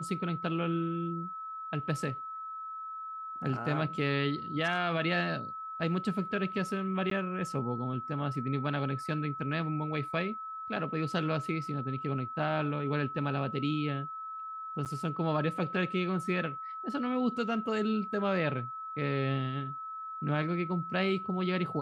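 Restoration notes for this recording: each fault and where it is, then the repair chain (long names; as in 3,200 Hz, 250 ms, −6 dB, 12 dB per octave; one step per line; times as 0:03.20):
whistle 1,300 Hz −38 dBFS
0:07.10–0:07.11: drop-out 13 ms
0:14.85–0:14.86: drop-out 8.5 ms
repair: notch filter 1,300 Hz, Q 30
repair the gap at 0:07.10, 13 ms
repair the gap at 0:14.85, 8.5 ms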